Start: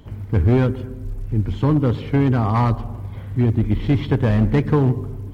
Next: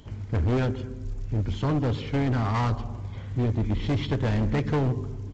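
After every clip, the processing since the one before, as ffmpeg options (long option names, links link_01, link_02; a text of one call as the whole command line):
ffmpeg -i in.wav -af "highshelf=frequency=3800:gain=12,aresample=16000,volume=16.5dB,asoftclip=hard,volume=-16.5dB,aresample=44100,volume=-4.5dB" out.wav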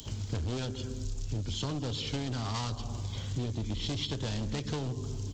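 ffmpeg -i in.wav -filter_complex "[0:a]acrossover=split=110[link_01][link_02];[link_02]aexciter=amount=4.6:drive=7.5:freq=3000[link_03];[link_01][link_03]amix=inputs=2:normalize=0,acompressor=threshold=-31dB:ratio=6" out.wav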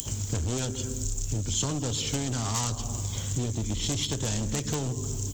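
ffmpeg -i in.wav -filter_complex "[0:a]aexciter=amount=7.8:drive=5.3:freq=6500,asplit=2[link_01][link_02];[link_02]aeval=exprs='(mod(8.91*val(0)+1,2)-1)/8.91':channel_layout=same,volume=-5dB[link_03];[link_01][link_03]amix=inputs=2:normalize=0" out.wav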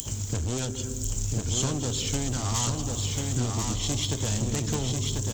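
ffmpeg -i in.wav -af "aecho=1:1:1043:0.668" out.wav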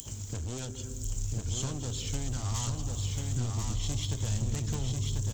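ffmpeg -i in.wav -af "asubboost=boost=3:cutoff=150,volume=-8dB" out.wav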